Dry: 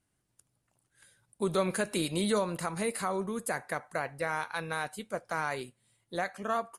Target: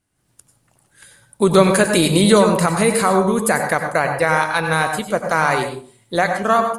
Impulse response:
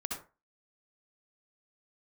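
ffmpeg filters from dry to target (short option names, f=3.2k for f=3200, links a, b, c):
-filter_complex "[0:a]dynaudnorm=f=140:g=3:m=11dB,asplit=2[a][b];[1:a]atrim=start_sample=2205,asetrate=30870,aresample=44100[c];[b][c]afir=irnorm=-1:irlink=0,volume=-3.5dB[d];[a][d]amix=inputs=2:normalize=0"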